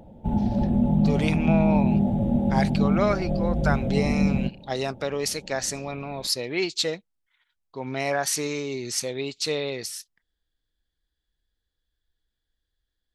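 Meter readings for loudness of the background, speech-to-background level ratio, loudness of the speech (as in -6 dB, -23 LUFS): -23.5 LUFS, -5.0 dB, -28.5 LUFS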